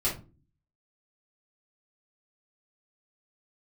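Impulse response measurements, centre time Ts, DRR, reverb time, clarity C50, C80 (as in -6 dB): 24 ms, -8.0 dB, no single decay rate, 8.5 dB, 16.0 dB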